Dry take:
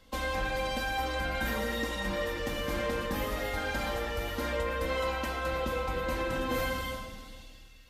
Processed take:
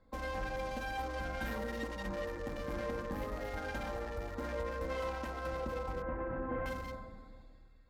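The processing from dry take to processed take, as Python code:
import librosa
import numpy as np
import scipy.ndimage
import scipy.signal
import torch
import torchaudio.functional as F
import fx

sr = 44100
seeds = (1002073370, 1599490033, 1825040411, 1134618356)

y = fx.wiener(x, sr, points=15)
y = fx.lowpass(y, sr, hz=1900.0, slope=24, at=(6.02, 6.66))
y = F.gain(torch.from_numpy(y), -5.5).numpy()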